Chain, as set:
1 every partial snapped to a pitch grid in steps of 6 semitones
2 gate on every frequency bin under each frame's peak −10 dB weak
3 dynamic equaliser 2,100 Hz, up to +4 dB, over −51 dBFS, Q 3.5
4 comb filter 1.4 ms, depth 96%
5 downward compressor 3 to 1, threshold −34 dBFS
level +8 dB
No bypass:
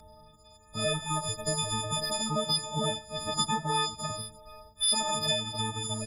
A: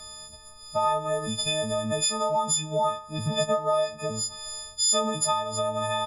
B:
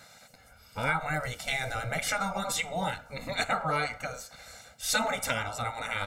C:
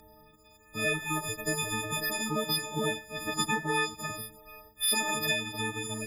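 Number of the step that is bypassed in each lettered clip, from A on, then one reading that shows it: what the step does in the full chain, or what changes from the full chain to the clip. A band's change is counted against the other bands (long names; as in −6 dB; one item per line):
2, 500 Hz band +7.5 dB
1, 2 kHz band +12.0 dB
4, 2 kHz band +11.0 dB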